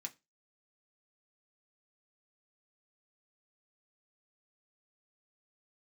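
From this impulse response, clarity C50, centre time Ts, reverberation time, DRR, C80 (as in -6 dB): 21.0 dB, 6 ms, not exponential, 1.5 dB, 28.0 dB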